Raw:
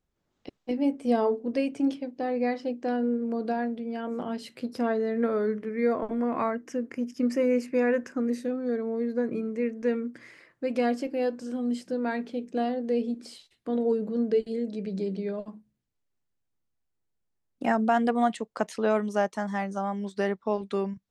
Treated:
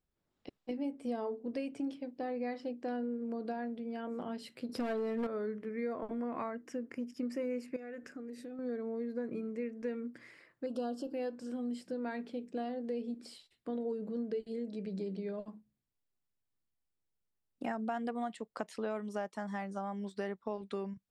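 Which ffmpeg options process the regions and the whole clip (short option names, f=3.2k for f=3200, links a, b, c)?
-filter_complex "[0:a]asettb=1/sr,asplit=3[a][b][c];[a]atrim=end=4.694[d];[b]atrim=start=4.69:end=5.27,asetpts=PTS-STARTPTS,afade=t=in:d=0.004:c=qsin,afade=t=out:st=0.576:d=0.004:c=qsin,acontrast=60,asoftclip=type=hard:threshold=-17.5dB[e];[c]atrim=start=5.266[f];[d][e]acrossfade=d=0.004:c1=hsin:c2=qsin[g];[g][f]acrossfade=d=0.004:c1=qsin:c2=hsin,asettb=1/sr,asplit=3[h][i][j];[h]atrim=end=7.764[k];[i]atrim=start=7.76:end=8.59,asetpts=PTS-STARTPTS,afade=t=in:d=0.004:c=qsin,afade=t=out:st=0.826:d=0.004:c=qsin,equalizer=f=990:w=7.1:g=-13.5,aecho=1:1:6.8:0.31,atrim=end_sample=36603,acompressor=threshold=-36dB:ratio=5:attack=3.2:release=140:knee=1:detection=peak[l];[j]atrim=start=8.586[m];[k][l]acrossfade=d=0.004:c1=hsin:c2=qsin[n];[n][m]acrossfade=d=0.004:c1=qsin:c2=hsin,asettb=1/sr,asplit=3[o][p][q];[o]atrim=end=10.664[r];[p]atrim=start=10.66:end=11.13,asetpts=PTS-STARTPTS,afade=t=in:d=0.004:c=qsin,afade=t=out:st=0.466:d=0.004:c=qsin,asuperstop=centerf=2100:order=8:qfactor=1.6,acompressor=mode=upward:threshold=-29dB:ratio=2.5:attack=3.2:release=140:knee=2.83:detection=peak[s];[q]atrim=start=11.126[t];[r][s]acrossfade=d=0.004:c1=hsin:c2=qsin[u];[u][t]acrossfade=d=0.004:c1=qsin:c2=hsin,bandreject=f=6.3k:w=8.6,acompressor=threshold=-29dB:ratio=3,volume=-6dB"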